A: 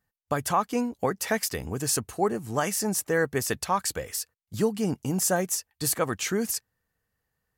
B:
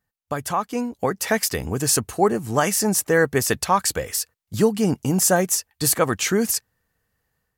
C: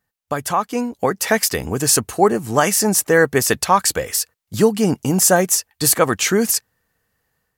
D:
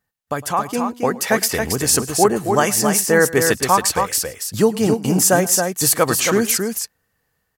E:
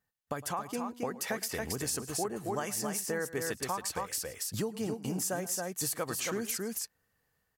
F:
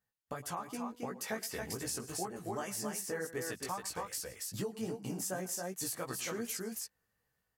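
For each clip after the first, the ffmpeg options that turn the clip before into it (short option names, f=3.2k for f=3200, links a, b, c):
-af "dynaudnorm=f=740:g=3:m=7dB"
-af "lowshelf=f=130:g=-6,volume=4.5dB"
-af "aecho=1:1:108|273:0.106|0.531,volume=-1dB"
-af "acompressor=threshold=-26dB:ratio=4,volume=-7dB"
-af "flanger=delay=15.5:depth=2.9:speed=2.6,volume=-1.5dB"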